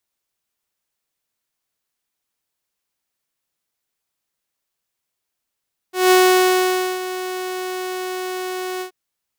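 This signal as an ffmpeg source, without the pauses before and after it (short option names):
-f lavfi -i "aevalsrc='0.447*(2*mod(369*t,1)-1)':d=2.979:s=44100,afade=t=in:d=0.175,afade=t=out:st=0.175:d=0.886:silence=0.188,afade=t=out:st=2.88:d=0.099"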